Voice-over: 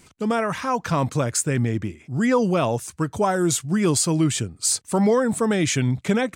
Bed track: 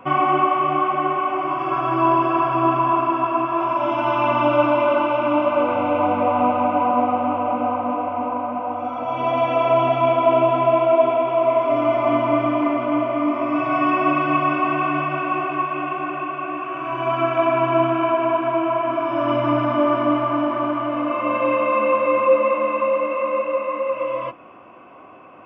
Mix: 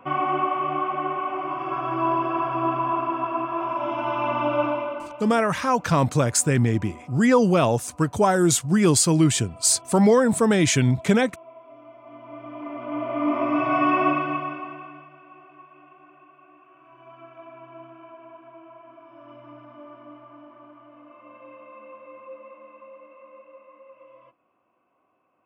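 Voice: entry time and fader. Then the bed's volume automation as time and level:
5.00 s, +2.0 dB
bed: 4.67 s -6 dB
5.47 s -28 dB
12.03 s -28 dB
13.33 s -1.5 dB
14.04 s -1.5 dB
15.14 s -26 dB

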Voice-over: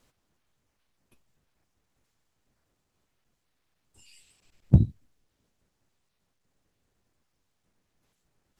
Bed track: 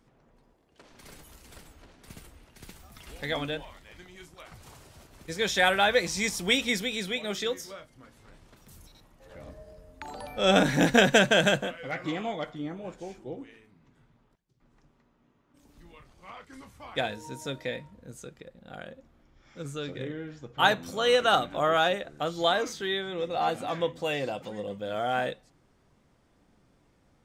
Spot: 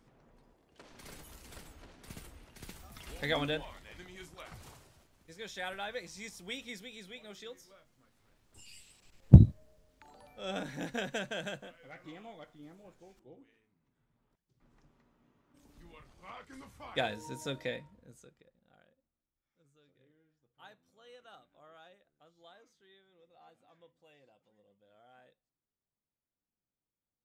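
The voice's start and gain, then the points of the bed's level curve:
4.60 s, +2.5 dB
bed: 4.61 s -1 dB
5.17 s -17 dB
13.96 s -17 dB
14.59 s -3 dB
17.65 s -3 dB
19.29 s -33 dB

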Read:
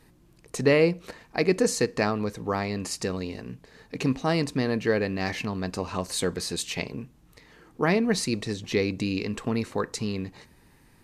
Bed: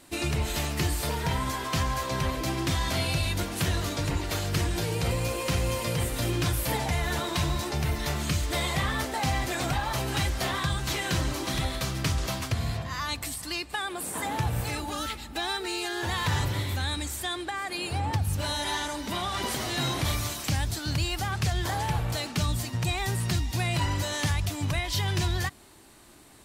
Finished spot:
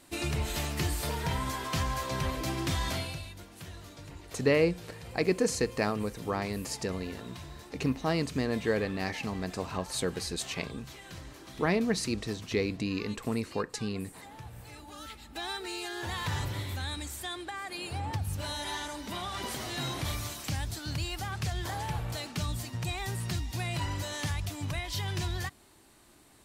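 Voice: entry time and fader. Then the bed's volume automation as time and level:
3.80 s, -4.5 dB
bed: 2.9 s -3.5 dB
3.34 s -18 dB
14.61 s -18 dB
15.46 s -6 dB

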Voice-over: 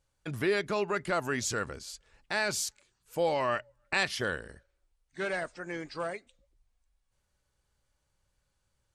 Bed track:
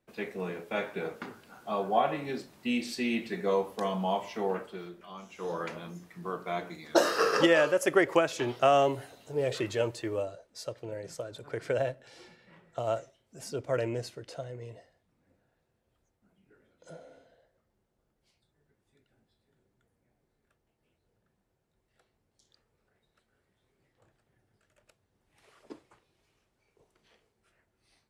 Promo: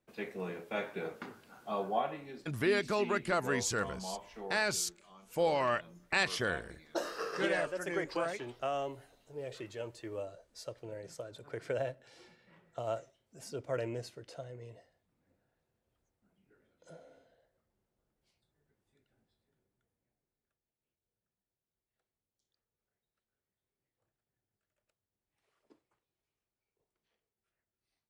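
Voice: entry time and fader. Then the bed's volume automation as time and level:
2.20 s, -1.5 dB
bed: 1.84 s -4 dB
2.32 s -12.5 dB
9.81 s -12.5 dB
10.38 s -5.5 dB
19.28 s -5.5 dB
20.67 s -18.5 dB

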